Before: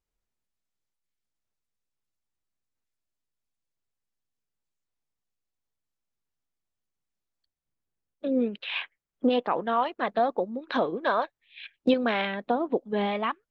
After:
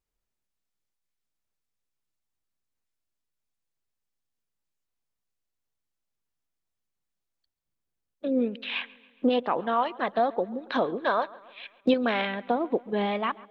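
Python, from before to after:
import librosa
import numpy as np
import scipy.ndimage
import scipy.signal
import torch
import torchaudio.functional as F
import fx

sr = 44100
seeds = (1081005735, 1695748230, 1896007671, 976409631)

y = fx.echo_wet_lowpass(x, sr, ms=138, feedback_pct=54, hz=3800.0, wet_db=-21.5)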